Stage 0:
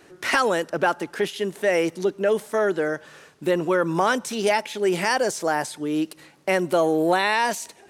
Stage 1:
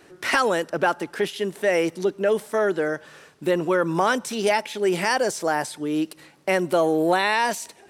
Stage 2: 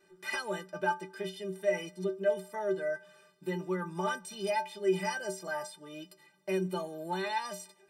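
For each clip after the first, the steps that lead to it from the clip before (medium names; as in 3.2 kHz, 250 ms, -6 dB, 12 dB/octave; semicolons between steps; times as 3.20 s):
band-stop 6.6 kHz, Q 23
inharmonic resonator 180 Hz, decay 0.32 s, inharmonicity 0.03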